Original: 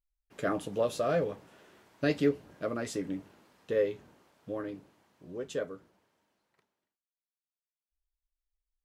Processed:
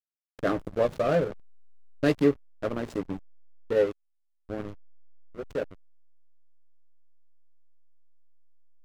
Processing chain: band-passed feedback delay 294 ms, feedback 45%, band-pass 1.3 kHz, level -17 dB; hysteresis with a dead band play -29.5 dBFS; trim +5.5 dB

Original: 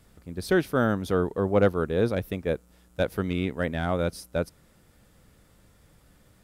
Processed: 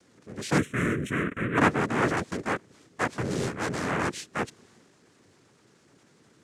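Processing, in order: noise-vocoded speech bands 3; transient shaper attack -4 dB, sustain +4 dB; 0.58–1.58 s: static phaser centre 2 kHz, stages 4

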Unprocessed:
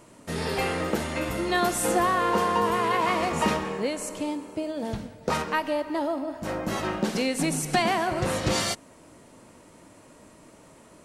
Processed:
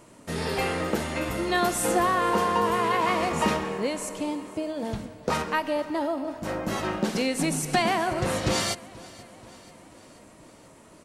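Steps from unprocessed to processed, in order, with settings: feedback delay 483 ms, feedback 59%, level -21 dB

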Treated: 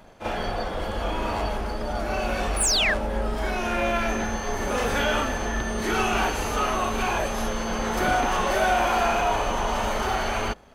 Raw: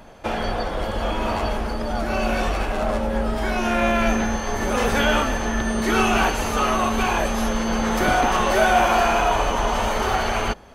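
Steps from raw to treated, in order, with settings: painted sound fall, 2.60–2.94 s, 1.5–11 kHz -18 dBFS; waveshaping leveller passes 1; reverse echo 38 ms -8 dB; trim -7.5 dB

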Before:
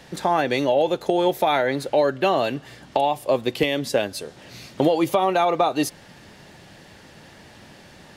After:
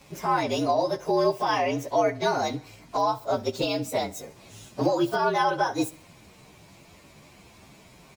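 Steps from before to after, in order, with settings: frequency axis rescaled in octaves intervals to 115%; feedback delay 67 ms, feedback 46%, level -21.5 dB; trim -1.5 dB

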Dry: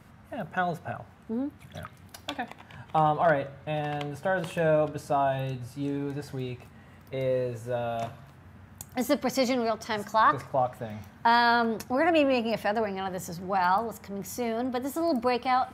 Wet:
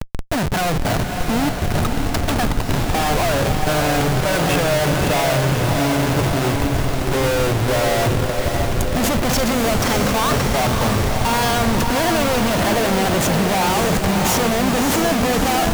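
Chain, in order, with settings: in parallel at -1 dB: compression 6:1, threshold -38 dBFS, peak gain reduction 18.5 dB; on the sum: Schmitt trigger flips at -38 dBFS; echo that smears into a reverb 602 ms, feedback 64%, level -4.5 dB; trim +8 dB

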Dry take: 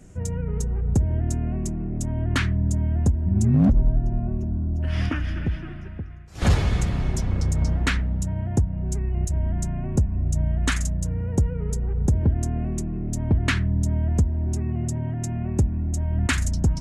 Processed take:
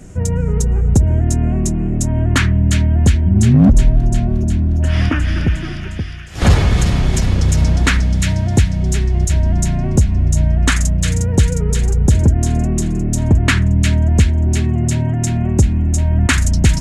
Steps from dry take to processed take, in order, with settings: in parallel at -2 dB: peak limiter -19 dBFS, peak gain reduction 7.5 dB; on the sum: feedback echo behind a high-pass 357 ms, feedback 71%, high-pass 2.4 kHz, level -4 dB; trim +5.5 dB

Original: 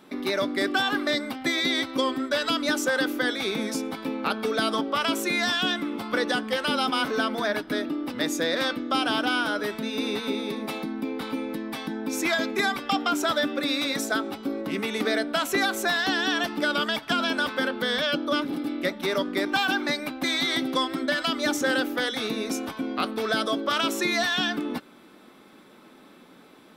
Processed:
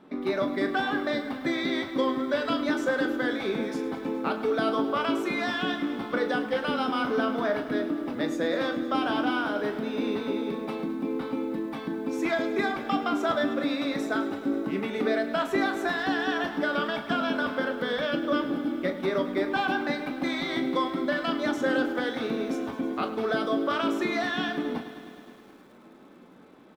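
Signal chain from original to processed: low-pass 1.1 kHz 6 dB/octave; early reflections 21 ms -10.5 dB, 39 ms -10 dB; bit-crushed delay 104 ms, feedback 80%, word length 9-bit, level -14 dB

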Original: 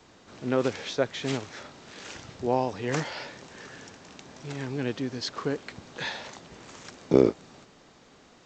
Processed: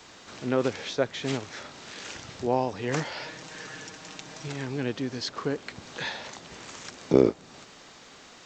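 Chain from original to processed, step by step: 3.22–4.48 s: comb 6.4 ms, depth 59%; tape noise reduction on one side only encoder only

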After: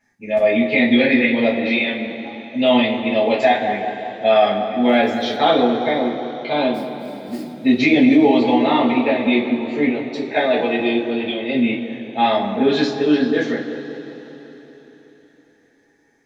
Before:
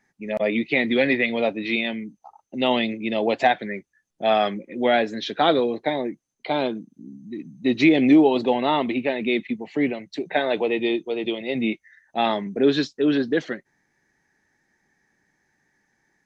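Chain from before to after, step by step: 6.74–7.52 s: sample-rate reducer 4.7 kHz, jitter 20%; two-slope reverb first 0.26 s, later 4.1 s, from -21 dB, DRR -7.5 dB; 4.87–5.37 s: crackle 500 per s -38 dBFS; on a send: bucket-brigade echo 189 ms, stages 2048, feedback 58%, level -11 dB; on the sum: loudness maximiser 0 dB; trim -3.5 dB

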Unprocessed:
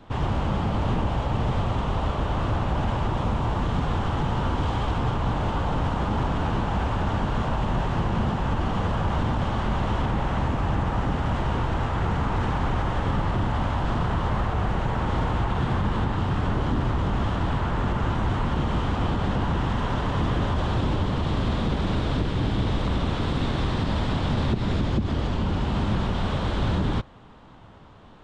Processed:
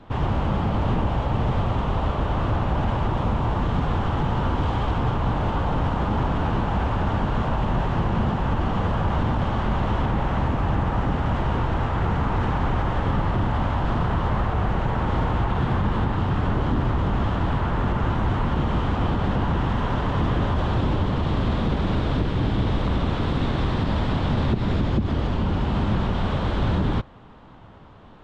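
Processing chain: treble shelf 5.6 kHz -11 dB; trim +2 dB

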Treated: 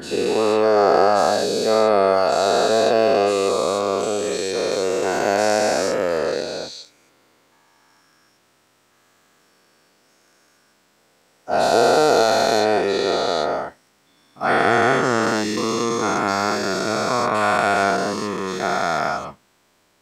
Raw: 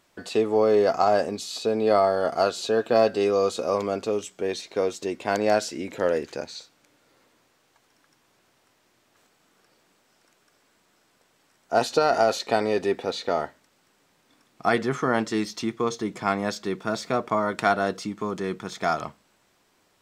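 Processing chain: every event in the spectrogram widened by 480 ms; trim -2 dB

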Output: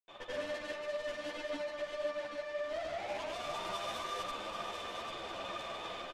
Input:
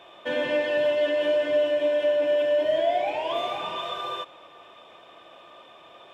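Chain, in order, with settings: level rider gain up to 11 dB; peak limiter -15 dBFS, peak gain reduction 11 dB; reverse; compression 6:1, threshold -29 dBFS, peak gain reduction 10.5 dB; reverse; valve stage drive 38 dB, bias 0.6; granulator, pitch spread up and down by 0 st; on a send: delay 791 ms -7.5 dB; on the sum: resampled via 32 kHz; three-phase chorus; trim +4.5 dB

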